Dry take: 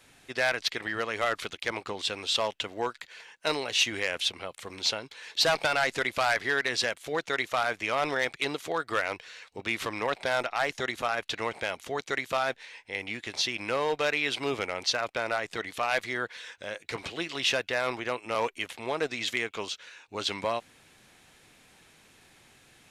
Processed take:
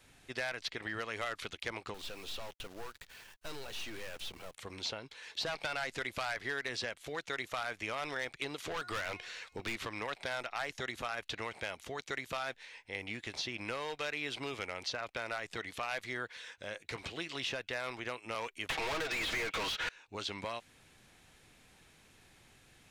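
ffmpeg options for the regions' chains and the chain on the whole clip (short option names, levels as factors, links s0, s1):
-filter_complex "[0:a]asettb=1/sr,asplit=3[s0][s1][s2];[s0]atrim=end=1.944[s3];[s1]atrim=start=1.94:end=4.55,asetpts=PTS-STARTPTS,afade=t=in:d=0.004:c=qsin,afade=t=out:st=2.606:d=0.004:c=qsin,aeval=exprs='(tanh(63.1*val(0)+0.35)-tanh(0.35))/63.1':c=same,bandreject=f=2100:w=19,acrusher=bits=9:dc=4:mix=0:aa=0.000001[s4];[s2]atrim=start=4.546[s5];[s3][s4]acrossfade=d=0.004:c1=hsin:c2=qsin[s6];[s6][s5]acrossfade=d=0.004:c1=qsin:c2=hsin,asettb=1/sr,asplit=3[s7][s8][s9];[s7]atrim=end=8.584[s10];[s8]atrim=start=8.58:end=9.76,asetpts=PTS-STARTPTS,afade=t=in:d=0.004:c=qsin,afade=t=out:st=1.176:d=0.004:c=qsin,bandreject=f=359.1:t=h:w=4,bandreject=f=718.2:t=h:w=4,bandreject=f=1077.3:t=h:w=4,bandreject=f=1436.4:t=h:w=4,bandreject=f=1795.5:t=h:w=4,bandreject=f=2154.6:t=h:w=4,bandreject=f=2513.7:t=h:w=4,bandreject=f=2872.8:t=h:w=4,bandreject=f=3231.9:t=h:w=4,bandreject=f=3591:t=h:w=4,bandreject=f=3950.1:t=h:w=4,bandreject=f=4309.2:t=h:w=4,bandreject=f=4668.3:t=h:w=4,bandreject=f=5027.4:t=h:w=4,bandreject=f=5386.5:t=h:w=4,bandreject=f=5745.6:t=h:w=4,bandreject=f=6104.7:t=h:w=4,bandreject=f=6463.8:t=h:w=4,bandreject=f=6822.9:t=h:w=4,bandreject=f=7182:t=h:w=4,bandreject=f=7541.1:t=h:w=4,bandreject=f=7900.2:t=h:w=4,bandreject=f=8259.3:t=h:w=4,bandreject=f=8618.4:t=h:w=4,bandreject=f=8977.5:t=h:w=4,bandreject=f=9336.6:t=h:w=4,bandreject=f=9695.7:t=h:w=4,bandreject=f=10054.8:t=h:w=4,bandreject=f=10413.9:t=h:w=4,bandreject=f=10773:t=h:w=4,bandreject=f=11132.1:t=h:w=4,bandreject=f=11491.2:t=h:w=4,acontrast=41,asoftclip=type=hard:threshold=0.0562[s11];[s9]atrim=start=9.756[s12];[s10][s11]acrossfade=d=0.004:c1=hsin:c2=qsin[s13];[s13][s12]acrossfade=d=0.004:c1=qsin:c2=hsin,asettb=1/sr,asplit=3[s14][s15][s16];[s14]atrim=end=18.694[s17];[s15]atrim=start=18.69:end=19.89,asetpts=PTS-STARTPTS,afade=t=in:d=0.004:c=qsin,afade=t=out:st=1.196:d=0.004:c=qsin,highshelf=f=4300:g=-11.5,aecho=1:1:6.3:0.71,atrim=end_sample=52920,asplit=2[s18][s19];[s19]highpass=f=720:p=1,volume=70.8,asoftclip=type=tanh:threshold=0.178[s20];[s18][s20]amix=inputs=2:normalize=0,lowpass=f=6500:p=1,volume=0.501[s21];[s16]atrim=start=19.886[s22];[s17][s21]acrossfade=d=0.004:c1=hsin:c2=qsin[s23];[s23][s22]acrossfade=d=0.004:c1=qsin:c2=hsin,lowshelf=f=100:g=10,acrossover=split=1300|6100[s24][s25][s26];[s24]acompressor=threshold=0.0178:ratio=4[s27];[s25]acompressor=threshold=0.0251:ratio=4[s28];[s26]acompressor=threshold=0.00316:ratio=4[s29];[s27][s28][s29]amix=inputs=3:normalize=0,volume=0.562"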